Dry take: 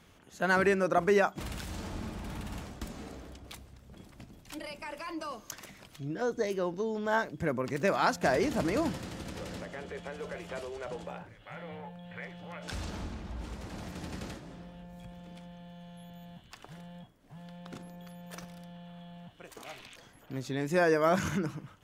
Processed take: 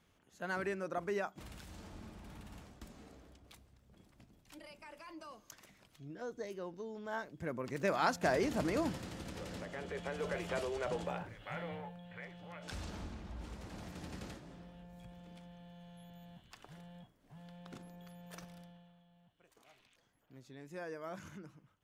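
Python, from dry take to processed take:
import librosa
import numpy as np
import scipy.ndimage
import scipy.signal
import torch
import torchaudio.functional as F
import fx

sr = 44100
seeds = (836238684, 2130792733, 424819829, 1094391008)

y = fx.gain(x, sr, db=fx.line((7.16, -12.0), (7.98, -4.5), (9.5, -4.5), (10.3, 2.0), (11.57, 2.0), (12.09, -6.0), (18.6, -6.0), (19.04, -19.0)))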